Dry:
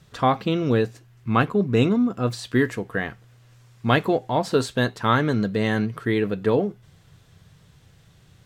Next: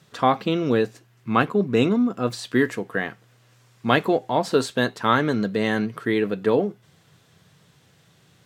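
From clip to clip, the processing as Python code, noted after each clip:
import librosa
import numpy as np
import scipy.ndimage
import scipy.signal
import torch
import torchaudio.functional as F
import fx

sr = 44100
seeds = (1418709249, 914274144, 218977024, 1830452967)

y = scipy.signal.sosfilt(scipy.signal.butter(2, 170.0, 'highpass', fs=sr, output='sos'), x)
y = F.gain(torch.from_numpy(y), 1.0).numpy()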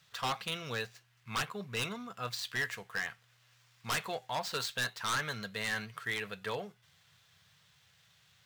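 y = scipy.signal.medfilt(x, 5)
y = fx.tone_stack(y, sr, knobs='10-0-10')
y = 10.0 ** (-26.0 / 20.0) * (np.abs((y / 10.0 ** (-26.0 / 20.0) + 3.0) % 4.0 - 2.0) - 1.0)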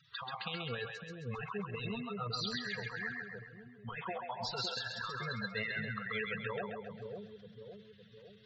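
y = fx.spec_gate(x, sr, threshold_db=-10, keep='strong')
y = fx.over_compress(y, sr, threshold_db=-39.0, ratio=-0.5)
y = fx.echo_split(y, sr, split_hz=560.0, low_ms=559, high_ms=133, feedback_pct=52, wet_db=-3.0)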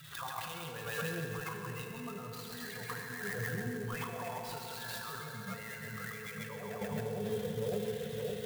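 y = fx.over_compress(x, sr, threshold_db=-50.0, ratio=-1.0)
y = fx.rev_fdn(y, sr, rt60_s=3.3, lf_ratio=1.2, hf_ratio=0.85, size_ms=20.0, drr_db=2.5)
y = fx.clock_jitter(y, sr, seeds[0], jitter_ms=0.038)
y = F.gain(torch.from_numpy(y), 7.0).numpy()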